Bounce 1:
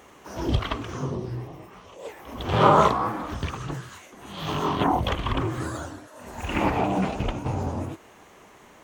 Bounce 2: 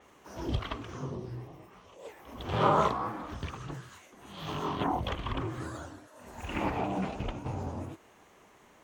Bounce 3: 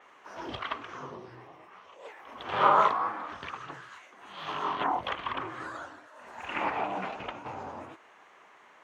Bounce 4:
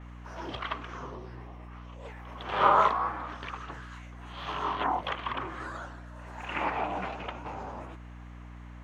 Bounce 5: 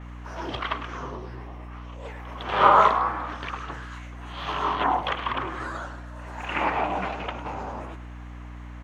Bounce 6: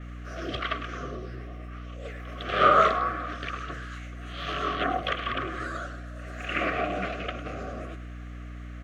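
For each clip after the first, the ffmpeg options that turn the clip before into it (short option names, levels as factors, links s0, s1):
-af "adynamicequalizer=threshold=0.00398:dfrequency=6800:dqfactor=0.7:tfrequency=6800:tqfactor=0.7:attack=5:release=100:ratio=0.375:range=2:mode=cutabove:tftype=highshelf,volume=0.398"
-af "bandpass=f=1500:t=q:w=0.86:csg=0,volume=2.11"
-af "aeval=exprs='val(0)+0.00631*(sin(2*PI*60*n/s)+sin(2*PI*2*60*n/s)/2+sin(2*PI*3*60*n/s)/3+sin(2*PI*4*60*n/s)/4+sin(2*PI*5*60*n/s)/5)':c=same"
-af "aecho=1:1:103:0.224,volume=1.88"
-af "asuperstop=centerf=910:order=12:qfactor=2.5"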